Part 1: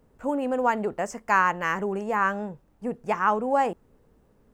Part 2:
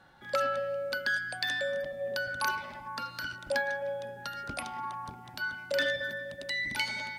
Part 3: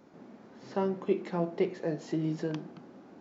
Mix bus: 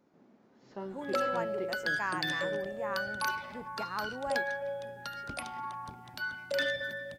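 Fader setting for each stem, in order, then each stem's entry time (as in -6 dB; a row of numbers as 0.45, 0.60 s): -14.5, -2.0, -11.0 dB; 0.70, 0.80, 0.00 s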